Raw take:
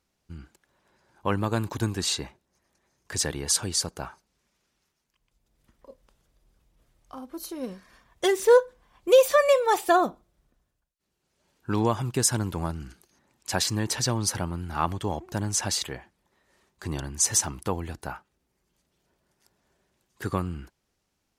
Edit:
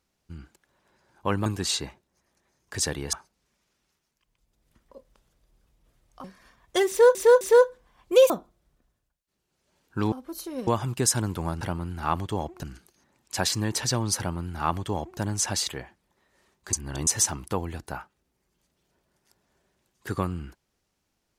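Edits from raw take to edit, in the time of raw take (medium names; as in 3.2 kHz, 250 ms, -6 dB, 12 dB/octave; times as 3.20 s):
1.46–1.84 s: delete
3.51–4.06 s: delete
7.17–7.72 s: move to 11.84 s
8.37–8.63 s: loop, 3 plays
9.26–10.02 s: delete
14.33–15.35 s: copy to 12.78 s
16.88–17.22 s: reverse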